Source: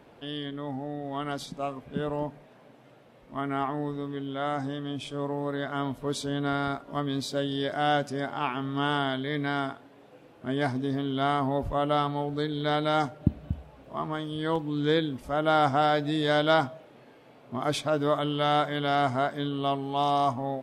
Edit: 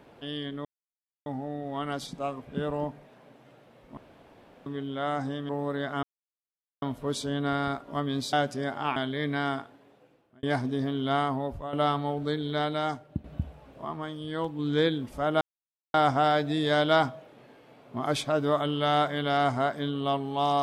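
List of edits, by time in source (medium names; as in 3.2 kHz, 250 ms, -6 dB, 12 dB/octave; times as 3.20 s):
0.65 s: insert silence 0.61 s
3.36–4.05 s: room tone
4.88–5.28 s: delete
5.82 s: insert silence 0.79 s
7.33–7.89 s: delete
8.52–9.07 s: delete
9.64–10.54 s: fade out
11.26–11.84 s: fade out, to -11.5 dB
12.49–13.35 s: fade out, to -11 dB
13.96–14.70 s: gain -3.5 dB
15.52 s: insert silence 0.53 s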